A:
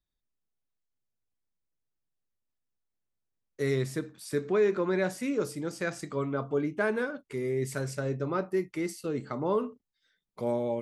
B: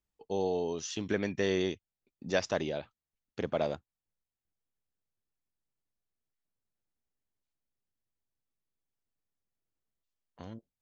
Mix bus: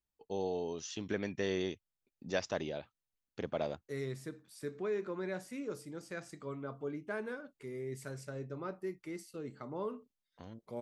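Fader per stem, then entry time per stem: -11.0, -5.0 dB; 0.30, 0.00 s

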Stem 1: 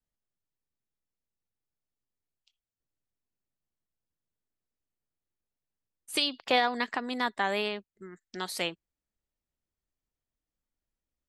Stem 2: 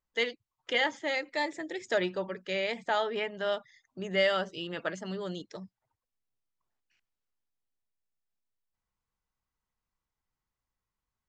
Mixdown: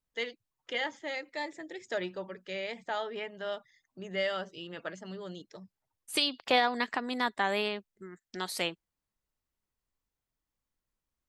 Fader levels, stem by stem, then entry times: -0.5, -5.5 dB; 0.00, 0.00 s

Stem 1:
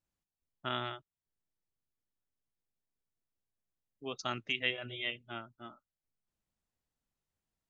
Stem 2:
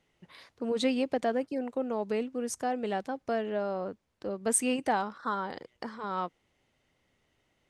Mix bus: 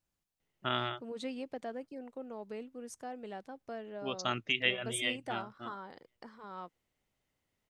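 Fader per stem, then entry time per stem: +3.0, -12.0 dB; 0.00, 0.40 s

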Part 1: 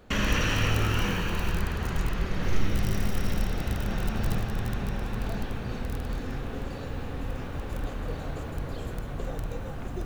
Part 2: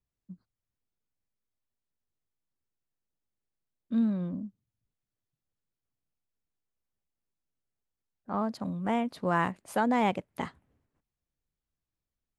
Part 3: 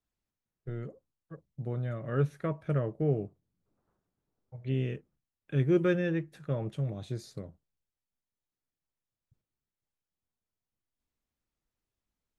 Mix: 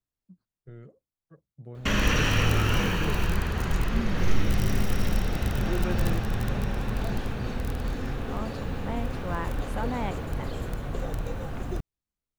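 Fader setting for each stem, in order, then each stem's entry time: +2.0, -6.5, -7.5 dB; 1.75, 0.00, 0.00 s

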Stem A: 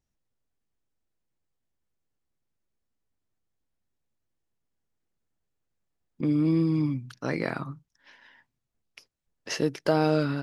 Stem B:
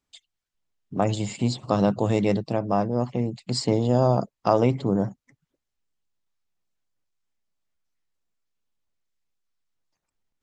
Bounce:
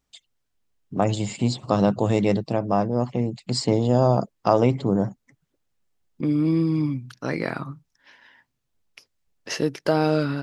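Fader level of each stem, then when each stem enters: +2.5, +1.5 dB; 0.00, 0.00 s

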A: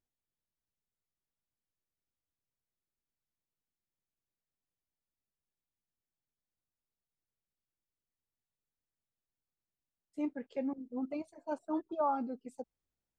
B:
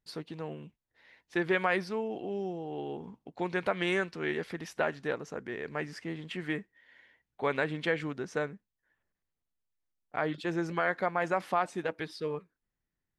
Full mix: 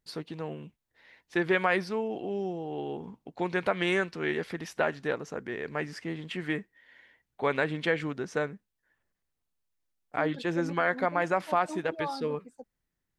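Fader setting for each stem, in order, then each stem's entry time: -3.5, +2.5 dB; 0.00, 0.00 s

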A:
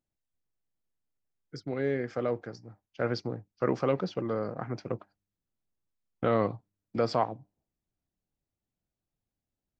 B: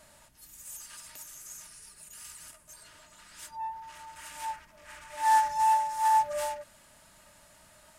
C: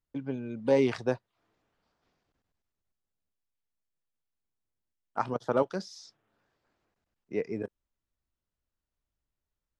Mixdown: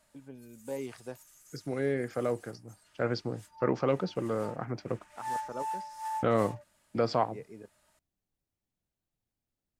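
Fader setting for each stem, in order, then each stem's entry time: -0.5, -12.0, -13.5 dB; 0.00, 0.00, 0.00 s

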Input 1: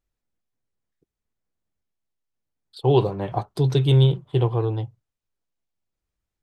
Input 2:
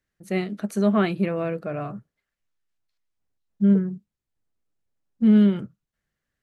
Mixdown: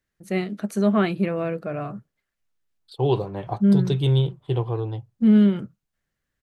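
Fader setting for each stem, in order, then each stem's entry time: -3.5, +0.5 dB; 0.15, 0.00 s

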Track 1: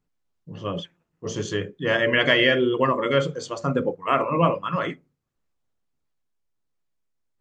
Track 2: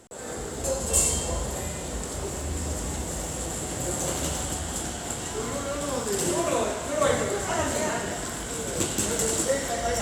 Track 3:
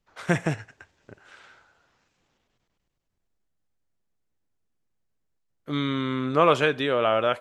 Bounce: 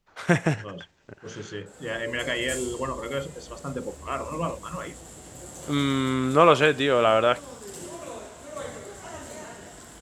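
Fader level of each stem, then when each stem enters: -9.5, -13.0, +2.5 dB; 0.00, 1.55, 0.00 s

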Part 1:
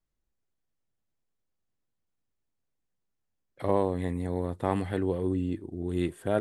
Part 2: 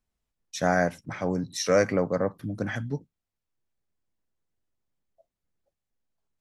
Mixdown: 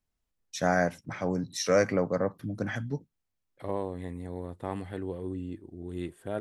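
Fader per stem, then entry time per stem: -7.0, -2.0 dB; 0.00, 0.00 s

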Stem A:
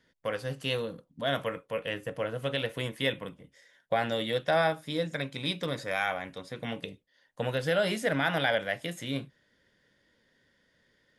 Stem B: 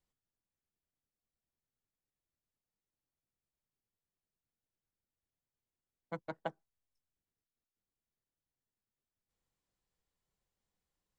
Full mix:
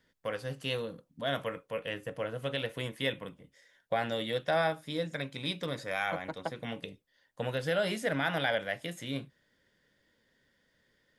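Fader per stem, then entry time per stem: -3.0, +2.5 dB; 0.00, 0.00 s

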